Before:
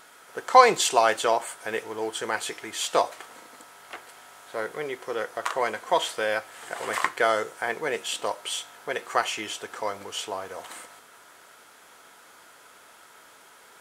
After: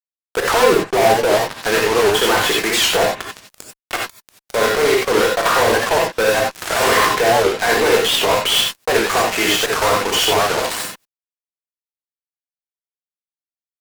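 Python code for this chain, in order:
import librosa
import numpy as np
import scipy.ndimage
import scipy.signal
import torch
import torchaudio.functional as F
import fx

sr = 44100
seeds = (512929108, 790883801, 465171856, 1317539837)

y = fx.env_lowpass_down(x, sr, base_hz=480.0, full_db=-19.5)
y = scipy.signal.sosfilt(scipy.signal.butter(4, 180.0, 'highpass', fs=sr, output='sos'), y)
y = fx.fuzz(y, sr, gain_db=47.0, gate_db=-38.0)
y = fx.rev_gated(y, sr, seeds[0], gate_ms=110, shape='rising', drr_db=-1.0)
y = fx.record_warp(y, sr, rpm=78.0, depth_cents=160.0)
y = y * librosa.db_to_amplitude(-1.0)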